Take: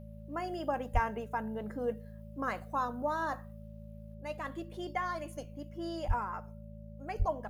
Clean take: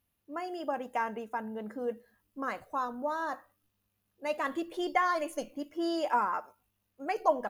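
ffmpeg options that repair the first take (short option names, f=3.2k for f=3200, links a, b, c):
-filter_complex "[0:a]bandreject=f=54.2:t=h:w=4,bandreject=f=108.4:t=h:w=4,bandreject=f=162.6:t=h:w=4,bandreject=f=216.8:t=h:w=4,bandreject=f=580:w=30,asplit=3[a][b][c];[a]afade=t=out:st=0.93:d=0.02[d];[b]highpass=f=140:w=0.5412,highpass=f=140:w=1.3066,afade=t=in:st=0.93:d=0.02,afade=t=out:st=1.05:d=0.02[e];[c]afade=t=in:st=1.05:d=0.02[f];[d][e][f]amix=inputs=3:normalize=0,asplit=3[g][h][i];[g]afade=t=out:st=6.07:d=0.02[j];[h]highpass=f=140:w=0.5412,highpass=f=140:w=1.3066,afade=t=in:st=6.07:d=0.02,afade=t=out:st=6.19:d=0.02[k];[i]afade=t=in:st=6.19:d=0.02[l];[j][k][l]amix=inputs=3:normalize=0,asplit=3[m][n][o];[m]afade=t=out:st=7.18:d=0.02[p];[n]highpass=f=140:w=0.5412,highpass=f=140:w=1.3066,afade=t=in:st=7.18:d=0.02,afade=t=out:st=7.3:d=0.02[q];[o]afade=t=in:st=7.3:d=0.02[r];[p][q][r]amix=inputs=3:normalize=0,asetnsamples=n=441:p=0,asendcmd='4.14 volume volume 7.5dB',volume=0dB"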